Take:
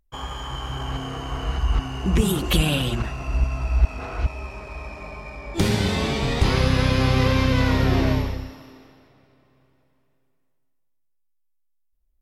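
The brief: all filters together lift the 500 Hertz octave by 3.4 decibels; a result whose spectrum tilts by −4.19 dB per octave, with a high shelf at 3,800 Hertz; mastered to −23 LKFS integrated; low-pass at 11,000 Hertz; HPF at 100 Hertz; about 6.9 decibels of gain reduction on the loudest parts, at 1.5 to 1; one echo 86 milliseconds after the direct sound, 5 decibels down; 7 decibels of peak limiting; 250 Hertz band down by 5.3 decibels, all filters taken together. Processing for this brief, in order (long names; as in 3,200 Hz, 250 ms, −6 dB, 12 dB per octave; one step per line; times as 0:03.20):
high-pass filter 100 Hz
low-pass filter 11,000 Hz
parametric band 250 Hz −8.5 dB
parametric band 500 Hz +6.5 dB
high-shelf EQ 3,800 Hz −3.5 dB
downward compressor 1.5 to 1, threshold −37 dBFS
brickwall limiter −23 dBFS
single-tap delay 86 ms −5 dB
level +10 dB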